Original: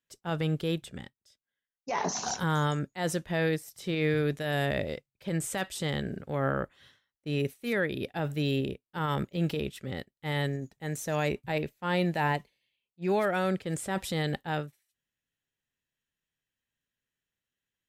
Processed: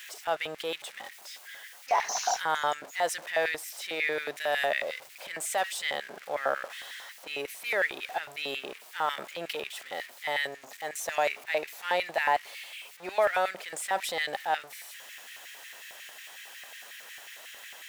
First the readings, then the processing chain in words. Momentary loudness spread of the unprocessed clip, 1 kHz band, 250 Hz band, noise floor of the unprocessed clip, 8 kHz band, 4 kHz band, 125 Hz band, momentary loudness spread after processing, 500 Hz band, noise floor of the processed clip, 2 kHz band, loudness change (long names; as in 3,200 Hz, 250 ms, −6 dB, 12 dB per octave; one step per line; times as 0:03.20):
8 LU, +4.5 dB, −17.0 dB, below −85 dBFS, +3.0 dB, +3.5 dB, −27.0 dB, 16 LU, −0.5 dB, −51 dBFS, +4.5 dB, 0.0 dB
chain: converter with a step at zero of −40 dBFS
auto-filter high-pass square 5.5 Hz 690–2,000 Hz